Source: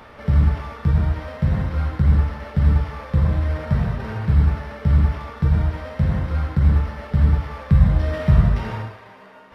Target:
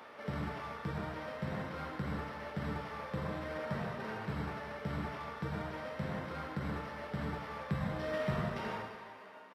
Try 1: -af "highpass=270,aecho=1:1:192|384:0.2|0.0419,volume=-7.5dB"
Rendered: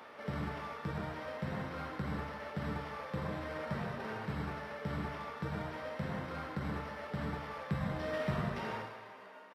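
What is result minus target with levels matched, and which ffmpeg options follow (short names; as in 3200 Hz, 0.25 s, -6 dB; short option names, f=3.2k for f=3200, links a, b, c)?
echo 86 ms early
-af "highpass=270,aecho=1:1:278|556:0.2|0.0419,volume=-7.5dB"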